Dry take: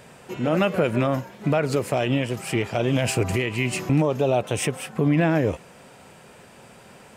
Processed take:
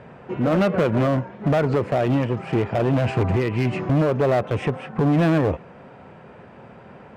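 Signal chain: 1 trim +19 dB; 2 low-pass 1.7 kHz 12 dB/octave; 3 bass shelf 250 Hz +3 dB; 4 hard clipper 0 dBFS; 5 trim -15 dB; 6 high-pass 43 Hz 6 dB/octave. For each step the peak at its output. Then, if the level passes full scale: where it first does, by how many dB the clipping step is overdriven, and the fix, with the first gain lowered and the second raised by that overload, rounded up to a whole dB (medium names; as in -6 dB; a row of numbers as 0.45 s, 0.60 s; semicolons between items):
+8.0 dBFS, +8.0 dBFS, +9.5 dBFS, 0.0 dBFS, -15.0 dBFS, -12.0 dBFS; step 1, 9.5 dB; step 1 +9 dB, step 5 -5 dB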